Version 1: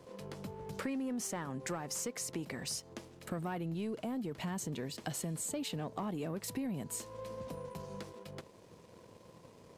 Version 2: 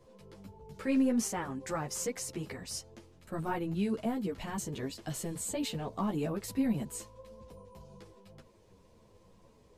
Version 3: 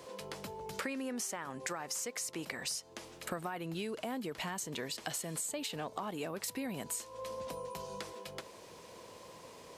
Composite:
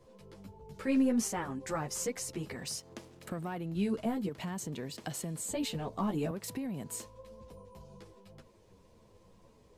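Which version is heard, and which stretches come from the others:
2
2.56–3.75 s: from 1
4.29–5.49 s: from 1
6.31–7.06 s: from 1
not used: 3

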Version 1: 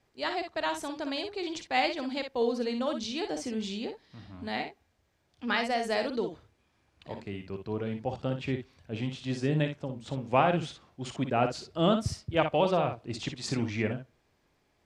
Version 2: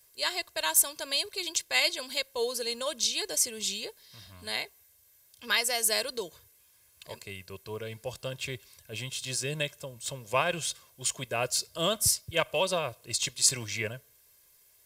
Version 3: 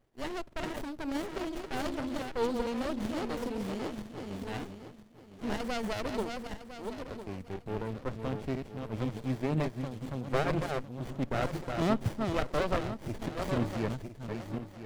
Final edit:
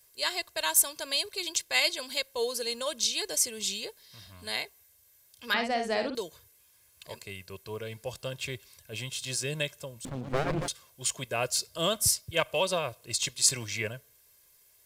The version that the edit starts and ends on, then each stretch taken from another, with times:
2
5.54–6.15 s: from 1
10.05–10.68 s: from 3

